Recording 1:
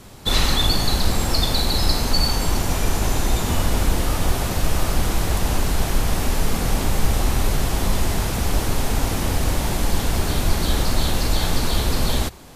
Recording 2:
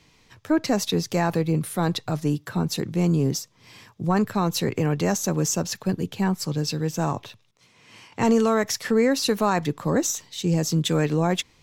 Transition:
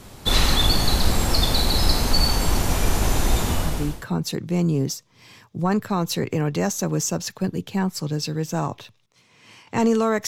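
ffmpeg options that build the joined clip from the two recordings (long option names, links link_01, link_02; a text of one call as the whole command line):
ffmpeg -i cue0.wav -i cue1.wav -filter_complex "[0:a]apad=whole_dur=10.27,atrim=end=10.27,atrim=end=4.06,asetpts=PTS-STARTPTS[link_01];[1:a]atrim=start=1.85:end=8.72,asetpts=PTS-STARTPTS[link_02];[link_01][link_02]acrossfade=duration=0.66:curve1=tri:curve2=tri" out.wav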